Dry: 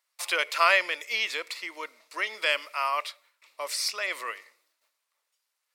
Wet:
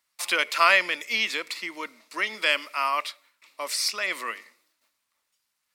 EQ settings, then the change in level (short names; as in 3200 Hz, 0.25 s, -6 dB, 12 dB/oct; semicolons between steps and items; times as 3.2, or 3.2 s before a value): resonant low shelf 330 Hz +10 dB, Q 1.5; +3.0 dB